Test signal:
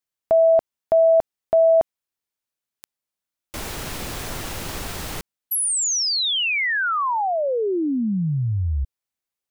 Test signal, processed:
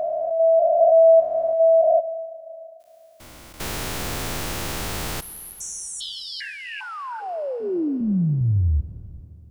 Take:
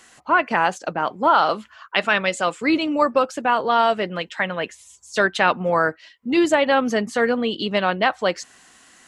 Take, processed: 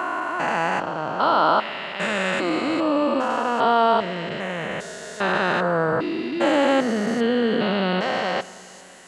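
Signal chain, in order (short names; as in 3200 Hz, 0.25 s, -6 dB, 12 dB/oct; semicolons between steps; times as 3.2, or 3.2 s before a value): stepped spectrum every 0.4 s; Schroeder reverb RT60 3.3 s, combs from 26 ms, DRR 17 dB; gain +4 dB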